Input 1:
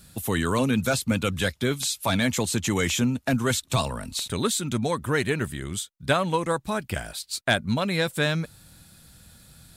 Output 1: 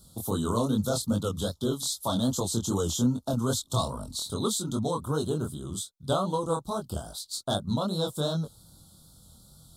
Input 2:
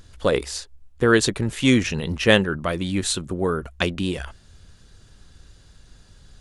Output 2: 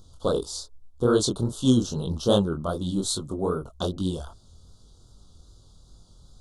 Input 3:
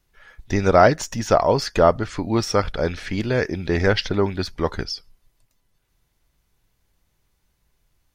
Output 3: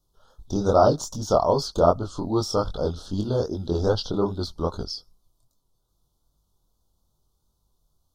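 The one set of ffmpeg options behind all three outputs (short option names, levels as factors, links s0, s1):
-af "asuperstop=centerf=2100:order=8:qfactor=1,flanger=delay=19.5:depth=6.7:speed=2.5"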